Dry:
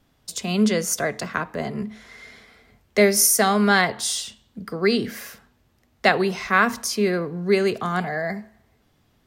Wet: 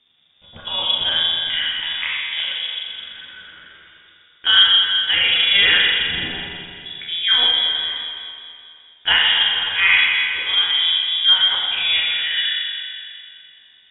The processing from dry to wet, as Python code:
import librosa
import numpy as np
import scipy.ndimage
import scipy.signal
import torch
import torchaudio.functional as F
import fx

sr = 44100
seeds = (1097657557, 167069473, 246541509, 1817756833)

y = fx.stretch_grains(x, sr, factor=1.5, grain_ms=75.0)
y = fx.rev_spring(y, sr, rt60_s=2.5, pass_ms=(30, 42), chirp_ms=75, drr_db=-3.5)
y = fx.freq_invert(y, sr, carrier_hz=3600)